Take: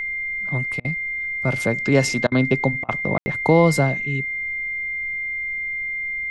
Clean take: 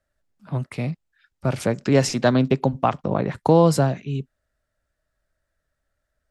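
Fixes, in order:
notch filter 2,100 Hz, Q 30
ambience match 0:03.18–0:03.26
repair the gap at 0:00.80/0:02.27/0:02.84, 46 ms
downward expander −19 dBFS, range −21 dB

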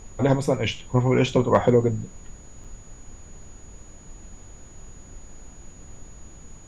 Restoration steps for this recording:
clipped peaks rebuilt −6.5 dBFS
notch filter 6,800 Hz, Q 30
repair the gap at 0:02.64, 5.9 ms
noise reduction from a noise print 23 dB

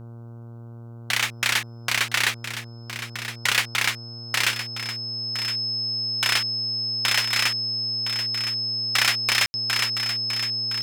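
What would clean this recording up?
hum removal 116.8 Hz, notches 13
notch filter 5,200 Hz, Q 30
ambience match 0:09.46–0:09.54
echo removal 1,014 ms −10.5 dB

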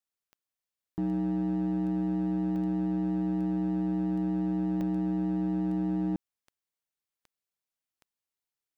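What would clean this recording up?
clipped peaks rebuilt −25.5 dBFS
click removal
repair the gap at 0:02.56/0:04.81, 1.1 ms

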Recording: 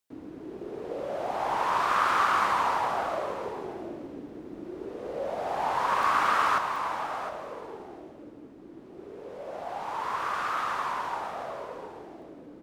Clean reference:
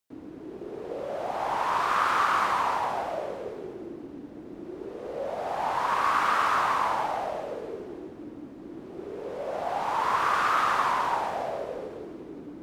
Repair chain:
repair the gap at 0:06.03/0:06.76/0:12.22, 1.2 ms
echo removal 711 ms −13 dB
level correction +6 dB, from 0:06.58

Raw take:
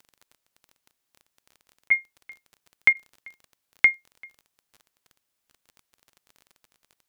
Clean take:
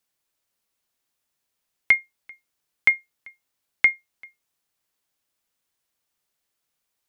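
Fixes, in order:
click removal
repair the gap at 0:01.89/0:02.93, 19 ms

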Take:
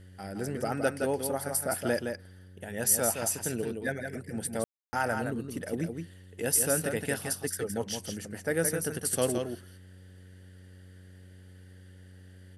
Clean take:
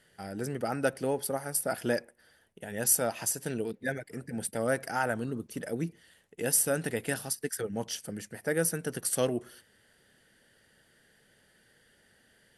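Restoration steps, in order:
hum removal 92.3 Hz, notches 6
ambience match 0:04.64–0:04.93
echo removal 167 ms −6 dB

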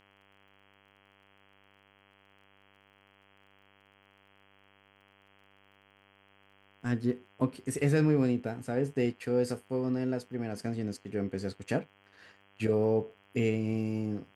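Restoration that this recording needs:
click removal
hum removal 99 Hz, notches 33

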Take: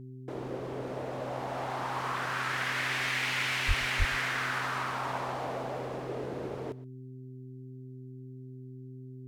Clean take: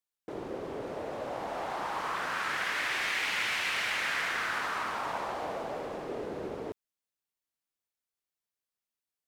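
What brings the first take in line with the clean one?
hum removal 128.8 Hz, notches 3
0:03.67–0:03.79: high-pass filter 140 Hz 24 dB per octave
0:03.98–0:04.10: high-pass filter 140 Hz 24 dB per octave
echo removal 121 ms −19 dB

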